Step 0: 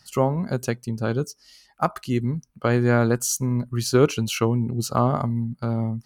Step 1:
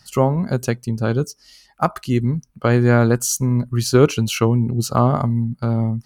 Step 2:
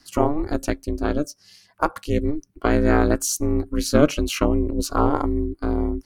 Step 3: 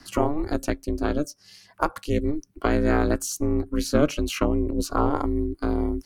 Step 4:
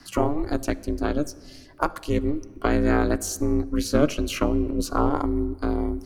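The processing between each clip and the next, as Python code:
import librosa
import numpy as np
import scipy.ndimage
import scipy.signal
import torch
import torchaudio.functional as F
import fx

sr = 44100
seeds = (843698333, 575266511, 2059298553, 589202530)

y1 = fx.low_shelf(x, sr, hz=130.0, db=4.5)
y1 = F.gain(torch.from_numpy(y1), 3.5).numpy()
y2 = y1 * np.sin(2.0 * np.pi * 150.0 * np.arange(len(y1)) / sr)
y3 = fx.band_squash(y2, sr, depth_pct=40)
y3 = F.gain(torch.from_numpy(y3), -3.0).numpy()
y4 = fx.room_shoebox(y3, sr, seeds[0], volume_m3=2500.0, walls='mixed', distance_m=0.31)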